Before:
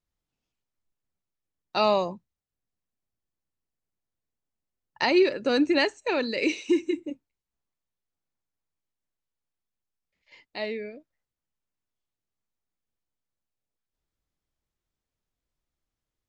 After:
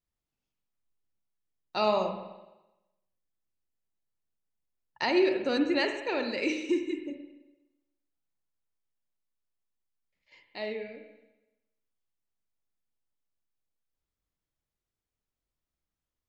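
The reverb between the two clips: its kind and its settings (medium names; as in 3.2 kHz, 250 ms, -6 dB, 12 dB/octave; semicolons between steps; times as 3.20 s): spring tank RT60 1 s, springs 42/58 ms, chirp 80 ms, DRR 5 dB; trim -5 dB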